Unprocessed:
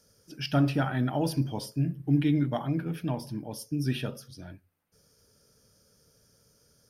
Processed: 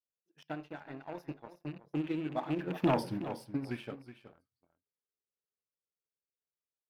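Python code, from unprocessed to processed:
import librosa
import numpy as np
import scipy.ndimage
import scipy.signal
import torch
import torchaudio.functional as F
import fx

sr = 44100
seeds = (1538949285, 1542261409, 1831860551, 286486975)

p1 = fx.rattle_buzz(x, sr, strikes_db=-28.0, level_db=-32.0)
p2 = fx.doppler_pass(p1, sr, speed_mps=23, closest_m=1.6, pass_at_s=2.97)
p3 = fx.rider(p2, sr, range_db=4, speed_s=0.5)
p4 = p2 + F.gain(torch.from_numpy(p3), -2.5).numpy()
p5 = fx.peak_eq(p4, sr, hz=9000.0, db=-6.0, octaves=2.8)
p6 = fx.leveller(p5, sr, passes=2)
p7 = fx.noise_reduce_blind(p6, sr, reduce_db=9)
p8 = fx.transient(p7, sr, attack_db=8, sustain_db=0)
p9 = fx.bass_treble(p8, sr, bass_db=-12, treble_db=-7)
y = p9 + fx.echo_single(p9, sr, ms=371, db=-13.0, dry=0)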